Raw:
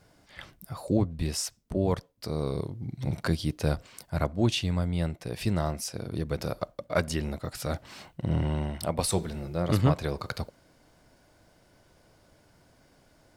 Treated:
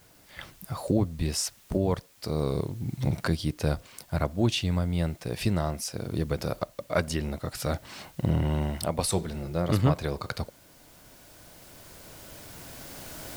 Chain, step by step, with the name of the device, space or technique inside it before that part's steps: cheap recorder with automatic gain (white noise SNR 30 dB; recorder AGC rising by 5.5 dB/s)

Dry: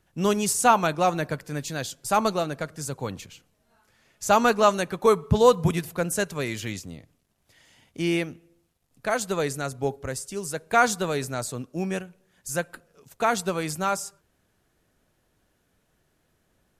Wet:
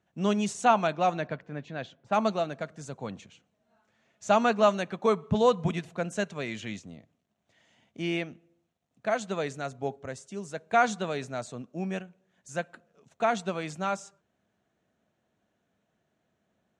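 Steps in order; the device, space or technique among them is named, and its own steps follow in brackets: dynamic bell 2.9 kHz, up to +4 dB, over -39 dBFS, Q 0.79; car door speaker (cabinet simulation 100–6800 Hz, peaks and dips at 210 Hz +7 dB, 670 Hz +7 dB, 4.9 kHz -9 dB); 0.65–2.13 s: level-controlled noise filter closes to 1.6 kHz, open at -12.5 dBFS; trim -7 dB

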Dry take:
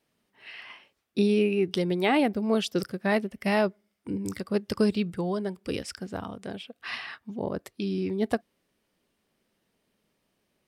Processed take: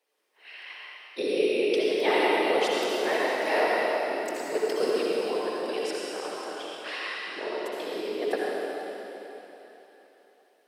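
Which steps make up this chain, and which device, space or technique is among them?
whispering ghost (whisper effect; high-pass 370 Hz 24 dB/octave; reverberation RT60 3.7 s, pre-delay 60 ms, DRR -5.5 dB); trim -2.5 dB

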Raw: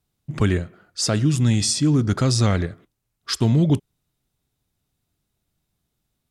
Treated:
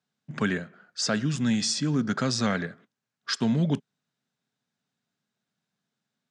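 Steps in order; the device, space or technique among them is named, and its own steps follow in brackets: television speaker (cabinet simulation 160–7200 Hz, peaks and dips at 230 Hz +4 dB, 330 Hz -9 dB, 1.6 kHz +8 dB); trim -4 dB

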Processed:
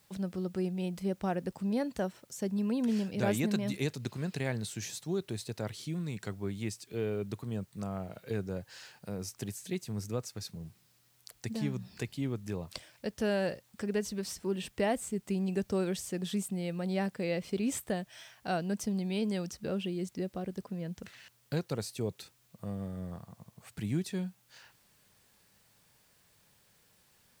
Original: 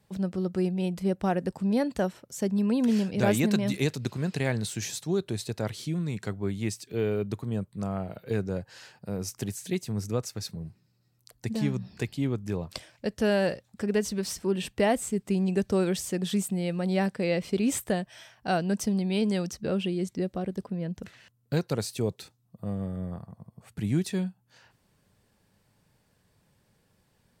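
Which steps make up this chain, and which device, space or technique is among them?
noise-reduction cassette on a plain deck (tape noise reduction on one side only encoder only; wow and flutter 15 cents; white noise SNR 34 dB); trim -6 dB

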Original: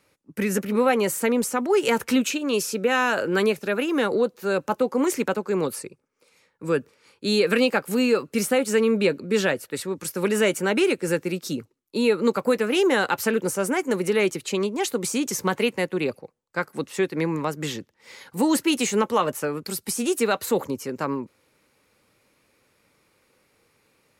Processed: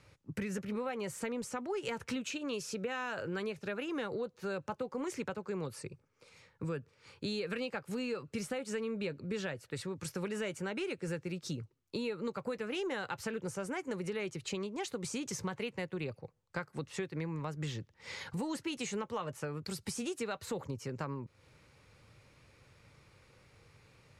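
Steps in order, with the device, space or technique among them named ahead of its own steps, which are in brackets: jukebox (low-pass 7.2 kHz 12 dB/octave; resonant low shelf 170 Hz +10 dB, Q 1.5; compression 4:1, threshold -39 dBFS, peak gain reduction 19.5 dB); trim +1 dB

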